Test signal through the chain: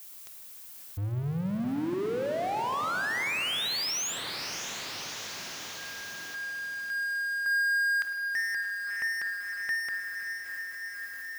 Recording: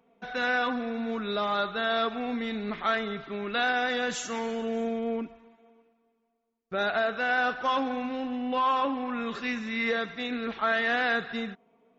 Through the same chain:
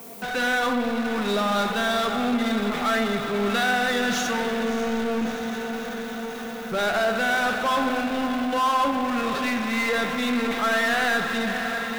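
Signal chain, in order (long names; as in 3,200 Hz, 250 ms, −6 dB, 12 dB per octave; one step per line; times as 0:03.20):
Butterworth low-pass 6,800 Hz 72 dB per octave
background noise violet −65 dBFS
feedback delay with all-pass diffusion 606 ms, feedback 60%, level −11.5 dB
power curve on the samples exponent 0.5
spring reverb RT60 2 s, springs 49 ms, chirp 60 ms, DRR 7 dB
level −1.5 dB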